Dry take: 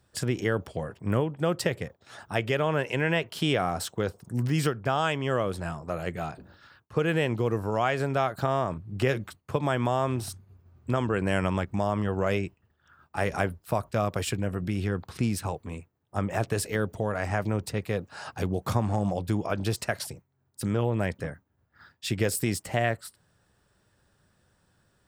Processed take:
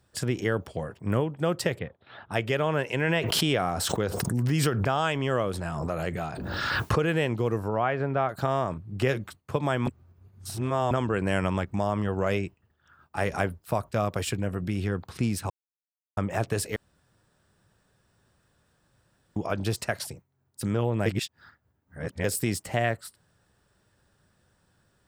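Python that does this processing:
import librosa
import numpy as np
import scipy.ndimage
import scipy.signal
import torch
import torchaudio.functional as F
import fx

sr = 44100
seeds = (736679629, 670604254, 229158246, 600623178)

y = fx.steep_lowpass(x, sr, hz=3900.0, slope=48, at=(1.79, 2.31))
y = fx.pre_swell(y, sr, db_per_s=23.0, at=(3.04, 7.09))
y = fx.lowpass(y, sr, hz=2100.0, slope=12, at=(7.68, 8.29))
y = fx.edit(y, sr, fx.reverse_span(start_s=9.87, length_s=1.04),
    fx.silence(start_s=15.5, length_s=0.67),
    fx.room_tone_fill(start_s=16.76, length_s=2.6),
    fx.reverse_span(start_s=21.06, length_s=1.18), tone=tone)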